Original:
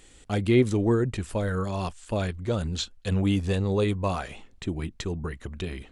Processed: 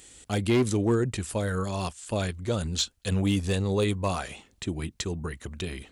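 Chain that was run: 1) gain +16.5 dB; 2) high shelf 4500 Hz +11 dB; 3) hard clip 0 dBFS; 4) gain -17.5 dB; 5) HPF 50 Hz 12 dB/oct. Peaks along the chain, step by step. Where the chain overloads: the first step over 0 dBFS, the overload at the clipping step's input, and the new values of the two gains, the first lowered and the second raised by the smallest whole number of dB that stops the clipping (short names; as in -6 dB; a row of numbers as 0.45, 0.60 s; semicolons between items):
+6.5, +7.0, 0.0, -17.5, -14.5 dBFS; step 1, 7.0 dB; step 1 +9.5 dB, step 4 -10.5 dB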